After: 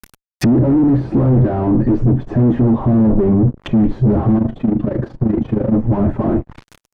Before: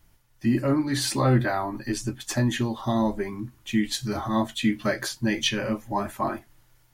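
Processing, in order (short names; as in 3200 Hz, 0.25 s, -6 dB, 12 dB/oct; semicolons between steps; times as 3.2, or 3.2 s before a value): fuzz box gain 43 dB, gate -52 dBFS; 4.38–5.73 AM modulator 26 Hz, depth 60%; treble ducked by the level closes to 380 Hz, closed at -17 dBFS; gain +4.5 dB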